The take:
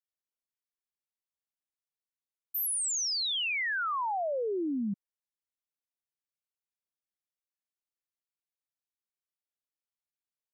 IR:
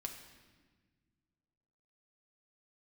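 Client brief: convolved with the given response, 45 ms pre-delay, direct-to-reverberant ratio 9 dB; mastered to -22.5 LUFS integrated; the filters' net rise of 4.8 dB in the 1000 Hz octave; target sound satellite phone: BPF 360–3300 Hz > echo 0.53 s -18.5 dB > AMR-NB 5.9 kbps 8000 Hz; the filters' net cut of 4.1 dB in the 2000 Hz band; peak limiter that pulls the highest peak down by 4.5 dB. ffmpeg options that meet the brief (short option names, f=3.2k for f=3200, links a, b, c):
-filter_complex "[0:a]equalizer=f=1k:t=o:g=8,equalizer=f=2k:t=o:g=-7.5,alimiter=level_in=2dB:limit=-24dB:level=0:latency=1,volume=-2dB,asplit=2[a][b];[1:a]atrim=start_sample=2205,adelay=45[c];[b][c]afir=irnorm=-1:irlink=0,volume=-7dB[d];[a][d]amix=inputs=2:normalize=0,highpass=360,lowpass=3.3k,aecho=1:1:530:0.119,volume=11dB" -ar 8000 -c:a libopencore_amrnb -b:a 5900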